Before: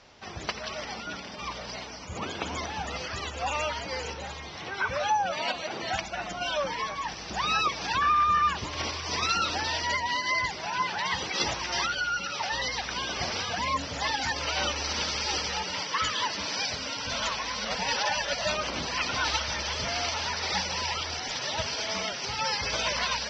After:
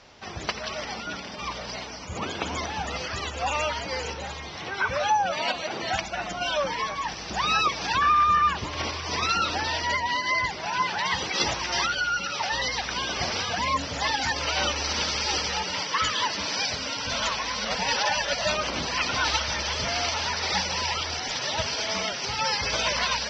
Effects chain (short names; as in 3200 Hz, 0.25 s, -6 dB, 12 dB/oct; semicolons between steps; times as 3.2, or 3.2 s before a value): 8.35–10.66 high shelf 5300 Hz -6 dB; gain +3 dB